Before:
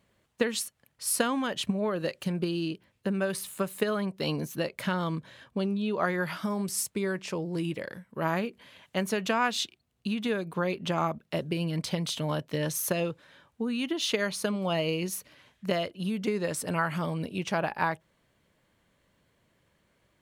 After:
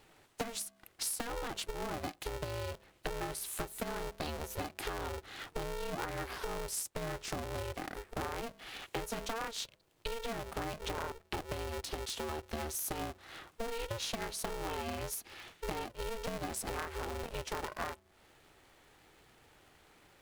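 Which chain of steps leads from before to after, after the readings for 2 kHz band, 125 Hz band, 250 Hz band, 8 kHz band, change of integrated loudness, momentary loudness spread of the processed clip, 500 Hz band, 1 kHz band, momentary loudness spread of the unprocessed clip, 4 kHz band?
−9.0 dB, −11.0 dB, −15.0 dB, −5.5 dB, −9.0 dB, 5 LU, −9.0 dB, −7.0 dB, 7 LU, −7.5 dB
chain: hum removal 142.6 Hz, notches 3
dynamic equaliser 2,400 Hz, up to −6 dB, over −46 dBFS, Q 0.93
downward compressor 10 to 1, threshold −43 dBFS, peak gain reduction 22 dB
low-shelf EQ 110 Hz −9.5 dB
ring modulator with a square carrier 230 Hz
level +8 dB

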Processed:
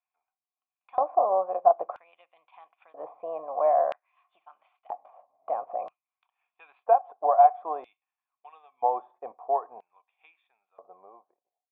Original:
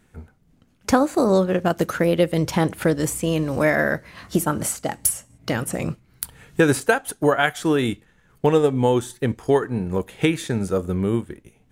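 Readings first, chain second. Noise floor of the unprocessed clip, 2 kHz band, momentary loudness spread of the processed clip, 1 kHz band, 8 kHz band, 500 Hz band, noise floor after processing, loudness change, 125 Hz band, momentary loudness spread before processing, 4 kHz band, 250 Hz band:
−60 dBFS, −28.0 dB, 20 LU, +2.5 dB, below −40 dB, −7.5 dB, below −85 dBFS, −4.5 dB, below −40 dB, 10 LU, below −30 dB, below −30 dB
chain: fade-out on the ending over 2.55 s
formant resonators in series a
auto-filter high-pass square 0.51 Hz 580–2,900 Hz
level +4 dB

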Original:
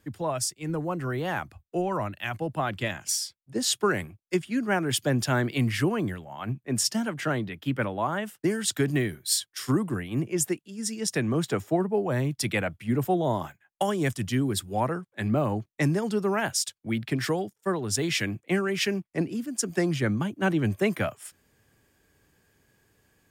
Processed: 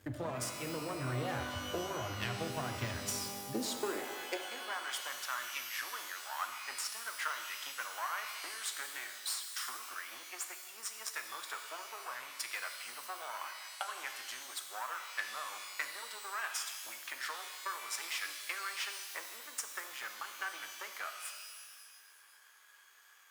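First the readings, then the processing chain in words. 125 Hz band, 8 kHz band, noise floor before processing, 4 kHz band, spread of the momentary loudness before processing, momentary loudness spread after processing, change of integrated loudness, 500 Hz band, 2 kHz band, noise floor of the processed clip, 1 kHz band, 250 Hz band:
−18.0 dB, −9.5 dB, −76 dBFS, −7.5 dB, 6 LU, 6 LU, −12.0 dB, −16.5 dB, −7.0 dB, −61 dBFS, −8.5 dB, −20.5 dB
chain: gain on one half-wave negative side −12 dB
downward compressor 12 to 1, threshold −40 dBFS, peak gain reduction 20 dB
high-pass filter sweep 82 Hz → 1,200 Hz, 0:02.95–0:04.88
parametric band 190 Hz −15 dB 0.3 octaves
reverb with rising layers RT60 1.6 s, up +12 semitones, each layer −2 dB, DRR 5.5 dB
level +5 dB

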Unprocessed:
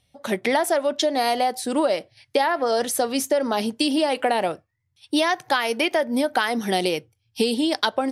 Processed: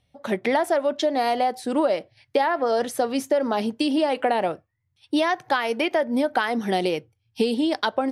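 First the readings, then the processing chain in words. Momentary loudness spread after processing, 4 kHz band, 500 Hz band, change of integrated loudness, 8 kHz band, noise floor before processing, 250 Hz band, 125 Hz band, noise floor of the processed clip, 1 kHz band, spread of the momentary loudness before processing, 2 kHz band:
5 LU, −5.0 dB, 0.0 dB, −1.0 dB, −9.5 dB, −71 dBFS, 0.0 dB, 0.0 dB, −72 dBFS, −0.5 dB, 5 LU, −2.0 dB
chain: high-shelf EQ 3,900 Hz −11.5 dB

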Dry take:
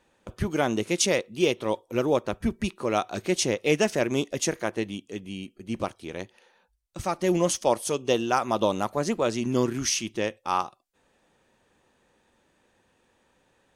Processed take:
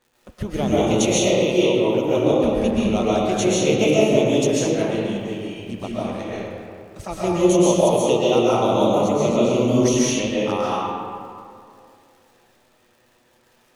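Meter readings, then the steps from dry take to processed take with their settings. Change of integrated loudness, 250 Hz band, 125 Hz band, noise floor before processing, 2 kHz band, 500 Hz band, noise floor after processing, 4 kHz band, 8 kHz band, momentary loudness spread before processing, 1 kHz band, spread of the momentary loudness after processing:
+7.5 dB, +9.0 dB, +8.5 dB, −68 dBFS, +2.5 dB, +8.5 dB, −59 dBFS, +5.0 dB, +3.5 dB, 13 LU, +5.0 dB, 14 LU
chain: flanger swept by the level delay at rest 8.4 ms, full sweep at −24 dBFS
surface crackle 140 per second −48 dBFS
comb and all-pass reverb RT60 2.4 s, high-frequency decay 0.5×, pre-delay 95 ms, DRR −8 dB

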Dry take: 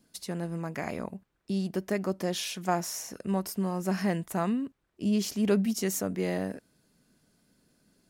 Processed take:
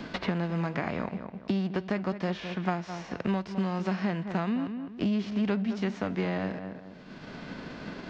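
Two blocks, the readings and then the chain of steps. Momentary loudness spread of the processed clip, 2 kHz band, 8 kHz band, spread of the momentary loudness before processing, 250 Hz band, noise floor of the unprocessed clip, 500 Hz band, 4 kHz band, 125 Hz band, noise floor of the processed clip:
12 LU, +3.0 dB, below −15 dB, 10 LU, +0.5 dB, −77 dBFS, −1.5 dB, −3.0 dB, +1.5 dB, −47 dBFS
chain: spectral envelope flattened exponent 0.6
Gaussian smoothing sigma 2.4 samples
on a send: feedback echo with a low-pass in the loop 208 ms, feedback 18%, low-pass 1,900 Hz, level −12 dB
on the sum: multiband upward and downward compressor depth 100%

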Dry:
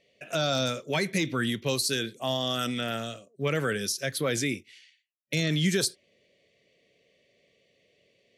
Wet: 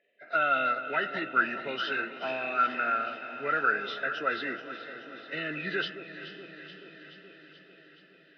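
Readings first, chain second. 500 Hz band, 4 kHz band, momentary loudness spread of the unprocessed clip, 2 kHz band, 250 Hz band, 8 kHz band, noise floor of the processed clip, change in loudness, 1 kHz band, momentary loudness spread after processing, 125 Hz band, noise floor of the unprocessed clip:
−4.5 dB, −9.0 dB, 7 LU, +4.5 dB, −9.5 dB, below −30 dB, −58 dBFS, −1.0 dB, +7.5 dB, 18 LU, −18.5 dB, −69 dBFS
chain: hearing-aid frequency compression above 1,500 Hz 1.5 to 1
notch comb filter 1,100 Hz
delay that swaps between a low-pass and a high-pass 214 ms, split 1,000 Hz, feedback 81%, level −10 dB
floating-point word with a short mantissa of 4 bits
loudspeaker in its box 390–3,300 Hz, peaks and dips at 510 Hz −6 dB, 900 Hz −3 dB, 1,400 Hz +7 dB, 2,300 Hz −4 dB
feedback delay with all-pass diffusion 477 ms, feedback 67%, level −14.5 dB
dynamic equaliser 1,400 Hz, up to +7 dB, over −42 dBFS, Q 2.4
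level −1.5 dB

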